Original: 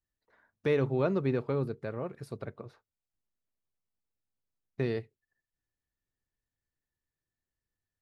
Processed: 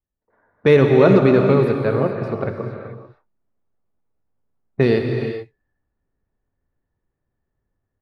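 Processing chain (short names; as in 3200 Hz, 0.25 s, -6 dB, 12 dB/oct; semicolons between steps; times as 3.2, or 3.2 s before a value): low-pass opened by the level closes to 1000 Hz, open at -27.5 dBFS; non-linear reverb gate 0.46 s flat, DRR 3 dB; AGC gain up to 11.5 dB; gain +3.5 dB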